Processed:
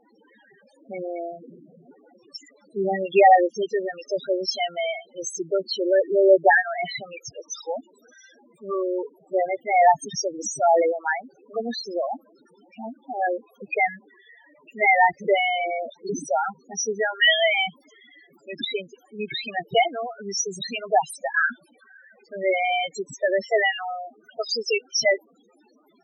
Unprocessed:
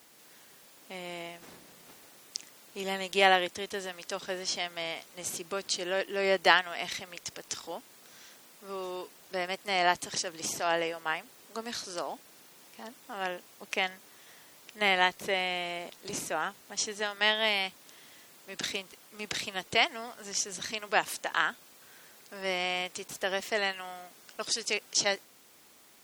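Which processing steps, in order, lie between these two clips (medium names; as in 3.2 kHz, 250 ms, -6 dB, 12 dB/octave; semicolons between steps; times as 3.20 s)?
sine folder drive 7 dB, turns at -4.5 dBFS; loudest bins only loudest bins 4; trim +3.5 dB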